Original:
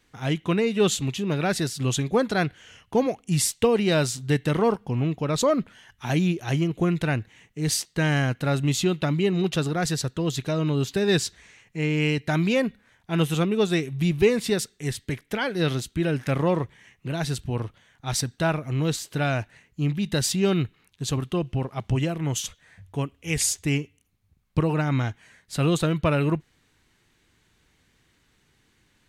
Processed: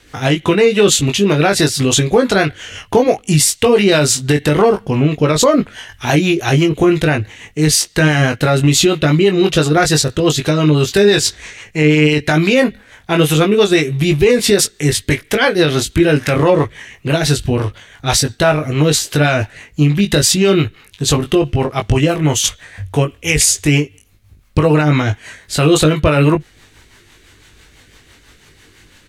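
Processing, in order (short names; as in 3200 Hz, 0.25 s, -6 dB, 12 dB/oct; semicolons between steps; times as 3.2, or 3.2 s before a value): bell 180 Hz -8 dB 1.1 oct; in parallel at +1 dB: compressor, threshold -35 dBFS, peak gain reduction 18 dB; on the sum: rotary speaker horn 6 Hz; doubler 20 ms -5 dB; maximiser +15 dB; gain -1 dB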